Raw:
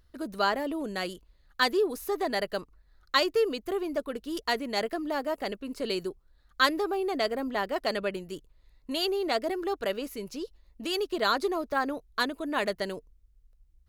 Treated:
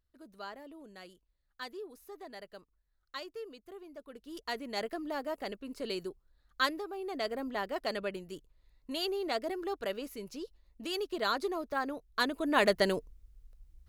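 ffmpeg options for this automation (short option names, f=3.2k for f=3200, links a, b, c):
-af "volume=11.5dB,afade=t=in:st=3.98:d=0.86:silence=0.251189,afade=t=out:st=6.62:d=0.26:silence=0.473151,afade=t=in:st=6.88:d=0.46:silence=0.446684,afade=t=in:st=12.06:d=0.8:silence=0.298538"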